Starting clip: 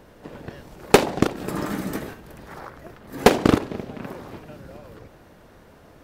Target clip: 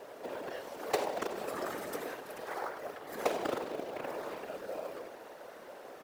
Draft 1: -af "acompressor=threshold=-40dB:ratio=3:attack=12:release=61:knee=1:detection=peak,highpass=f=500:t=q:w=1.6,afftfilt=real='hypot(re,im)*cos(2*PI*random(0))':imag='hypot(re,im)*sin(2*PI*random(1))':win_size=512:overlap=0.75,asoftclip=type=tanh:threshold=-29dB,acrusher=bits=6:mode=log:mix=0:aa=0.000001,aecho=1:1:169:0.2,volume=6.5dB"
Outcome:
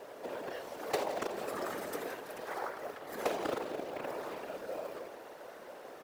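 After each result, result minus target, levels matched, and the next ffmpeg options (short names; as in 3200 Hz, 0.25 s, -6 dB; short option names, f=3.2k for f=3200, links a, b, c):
echo 70 ms late; soft clip: distortion +11 dB
-af "acompressor=threshold=-40dB:ratio=3:attack=12:release=61:knee=1:detection=peak,highpass=f=500:t=q:w=1.6,afftfilt=real='hypot(re,im)*cos(2*PI*random(0))':imag='hypot(re,im)*sin(2*PI*random(1))':win_size=512:overlap=0.75,asoftclip=type=tanh:threshold=-29dB,acrusher=bits=6:mode=log:mix=0:aa=0.000001,aecho=1:1:99:0.2,volume=6.5dB"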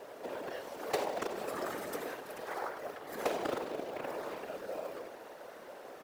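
soft clip: distortion +11 dB
-af "acompressor=threshold=-40dB:ratio=3:attack=12:release=61:knee=1:detection=peak,highpass=f=500:t=q:w=1.6,afftfilt=real='hypot(re,im)*cos(2*PI*random(0))':imag='hypot(re,im)*sin(2*PI*random(1))':win_size=512:overlap=0.75,asoftclip=type=tanh:threshold=-21dB,acrusher=bits=6:mode=log:mix=0:aa=0.000001,aecho=1:1:99:0.2,volume=6.5dB"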